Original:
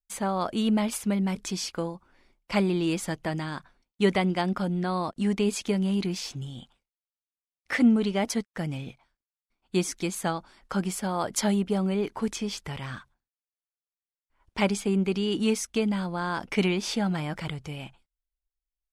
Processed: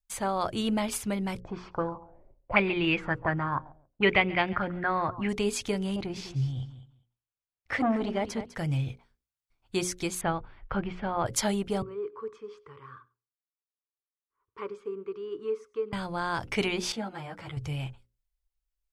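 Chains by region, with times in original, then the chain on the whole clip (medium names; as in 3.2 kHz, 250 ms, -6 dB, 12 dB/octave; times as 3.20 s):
1.40–5.29 s: feedback delay 138 ms, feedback 28%, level -20.5 dB + touch-sensitive low-pass 540–2500 Hz up, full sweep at -22.5 dBFS
5.96–8.55 s: low-pass 2.2 kHz 6 dB/octave + feedback delay 202 ms, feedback 15%, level -13 dB + transformer saturation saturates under 490 Hz
10.21–11.26 s: low-pass 2.9 kHz 24 dB/octave + bass shelf 94 Hz +8.5 dB
11.82–15.93 s: two resonant band-passes 700 Hz, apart 1.4 oct + delay 98 ms -22.5 dB
16.92–17.57 s: high-pass 240 Hz 6 dB/octave + treble shelf 2.2 kHz -8.5 dB + three-phase chorus
whole clip: resonant low shelf 150 Hz +6.5 dB, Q 3; hum notches 60/120/180/240/300/360/420/480/540 Hz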